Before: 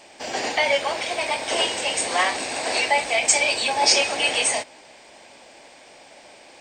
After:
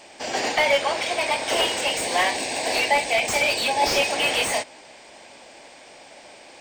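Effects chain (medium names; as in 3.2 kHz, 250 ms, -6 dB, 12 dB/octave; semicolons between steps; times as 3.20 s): 1.91–4.13 s: peaking EQ 1.3 kHz -14.5 dB 0.3 oct; slew-rate limiter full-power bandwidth 270 Hz; trim +1.5 dB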